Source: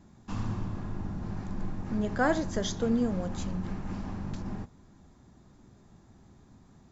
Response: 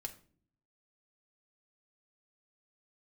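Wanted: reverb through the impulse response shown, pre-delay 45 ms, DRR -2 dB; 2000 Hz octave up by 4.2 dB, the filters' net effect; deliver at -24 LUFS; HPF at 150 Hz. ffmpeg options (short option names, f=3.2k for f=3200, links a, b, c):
-filter_complex "[0:a]highpass=150,equalizer=f=2k:t=o:g=6,asplit=2[a][b];[1:a]atrim=start_sample=2205,adelay=45[c];[b][c]afir=irnorm=-1:irlink=0,volume=5dB[d];[a][d]amix=inputs=2:normalize=0,volume=4dB"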